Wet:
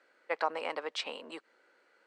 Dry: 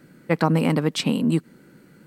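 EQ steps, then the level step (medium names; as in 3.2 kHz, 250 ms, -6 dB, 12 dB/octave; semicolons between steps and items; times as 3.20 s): high-pass 540 Hz 24 dB/octave; low-pass 11 kHz 12 dB/octave; distance through air 110 m; -6.5 dB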